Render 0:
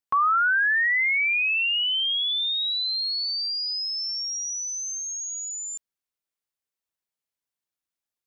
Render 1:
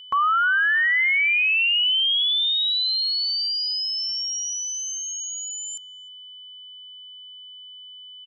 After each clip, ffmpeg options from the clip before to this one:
-filter_complex "[0:a]adynamicequalizer=threshold=0.0178:dfrequency=3400:dqfactor=0.76:tfrequency=3400:tqfactor=0.76:attack=5:release=100:ratio=0.375:range=2:mode=boostabove:tftype=bell,aeval=exprs='val(0)+0.01*sin(2*PI*3000*n/s)':c=same,asplit=2[s0][s1];[s1]adelay=308,lowpass=f=920:p=1,volume=0.178,asplit=2[s2][s3];[s3]adelay=308,lowpass=f=920:p=1,volume=0.35,asplit=2[s4][s5];[s5]adelay=308,lowpass=f=920:p=1,volume=0.35[s6];[s0][s2][s4][s6]amix=inputs=4:normalize=0"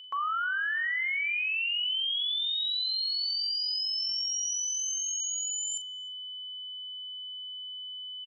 -filter_complex "[0:a]areverse,acompressor=threshold=0.0316:ratio=6,areverse,highpass=430,asplit=2[s0][s1];[s1]adelay=41,volume=0.282[s2];[s0][s2]amix=inputs=2:normalize=0"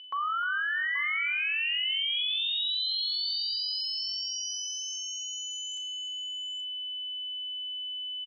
-af "lowpass=f=5200:w=0.5412,lowpass=f=5200:w=1.3066,aecho=1:1:91|304|829:0.1|0.237|0.266"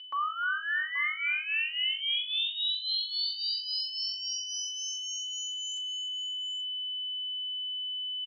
-af "aecho=1:1:3.4:0.73,areverse,acompressor=mode=upward:threshold=0.0316:ratio=2.5,areverse,volume=0.668"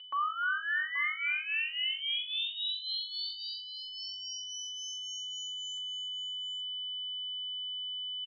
-af "highshelf=f=4400:g=-9.5,bandreject=f=5000:w=5.7"

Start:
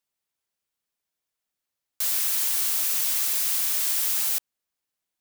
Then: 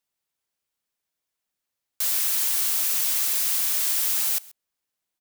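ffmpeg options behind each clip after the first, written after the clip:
-af "aecho=1:1:132:0.075,volume=1.12"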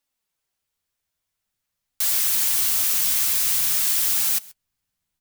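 -af "asubboost=boost=7.5:cutoff=150,flanger=delay=3.5:depth=9.6:regen=45:speed=0.48:shape=sinusoidal,volume=2.24"

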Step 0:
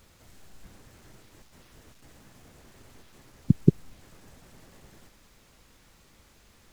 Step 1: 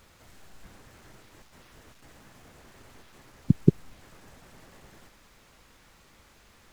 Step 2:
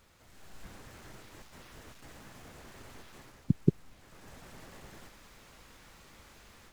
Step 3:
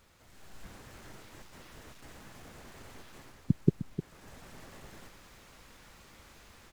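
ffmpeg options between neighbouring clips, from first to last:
-af "equalizer=f=1300:w=0.43:g=5,volume=0.891"
-af "dynaudnorm=f=290:g=3:m=2.66,volume=0.473"
-af "aecho=1:1:306:0.251"

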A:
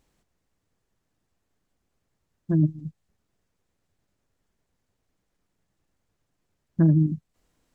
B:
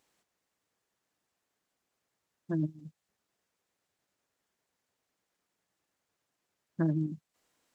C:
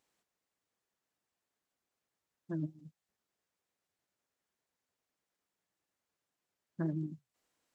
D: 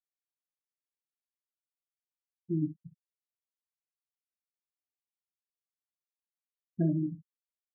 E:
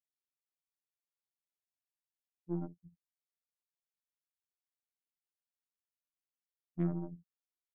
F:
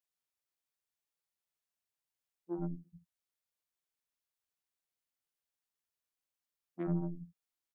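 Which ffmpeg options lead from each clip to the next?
-af "highpass=f=650:p=1"
-af "flanger=delay=1:depth=4.5:regen=-86:speed=1.7:shape=triangular,volume=0.841"
-filter_complex "[0:a]afftfilt=real='re*gte(hypot(re,im),0.0355)':imag='im*gte(hypot(re,im),0.0355)':win_size=1024:overlap=0.75,asplit=2[s0][s1];[s1]aecho=0:1:23|61:0.299|0.211[s2];[s0][s2]amix=inputs=2:normalize=0,volume=2.24"
-af "aeval=exprs='0.119*(cos(1*acos(clip(val(0)/0.119,-1,1)))-cos(1*PI/2))+0.00841*(cos(6*acos(clip(val(0)/0.119,-1,1)))-cos(6*PI/2))+0.00473*(cos(7*acos(clip(val(0)/0.119,-1,1)))-cos(7*PI/2))':c=same,afftfilt=real='hypot(re,im)*cos(PI*b)':imag='0':win_size=2048:overlap=0.75,volume=0.708"
-filter_complex "[0:a]acrossover=split=250[s0][s1];[s0]adelay=90[s2];[s2][s1]amix=inputs=2:normalize=0,volume=1.33"

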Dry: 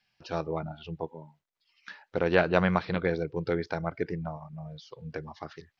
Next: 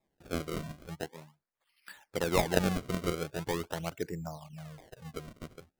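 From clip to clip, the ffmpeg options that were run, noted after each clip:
-af "acrusher=samples=29:mix=1:aa=0.000001:lfo=1:lforange=46.4:lforate=0.42,volume=0.596"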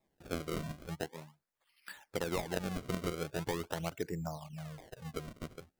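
-af "acompressor=threshold=0.0251:ratio=12,volume=1.12"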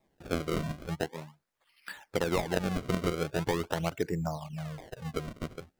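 -af "highshelf=f=6100:g=-6,volume=2.11"

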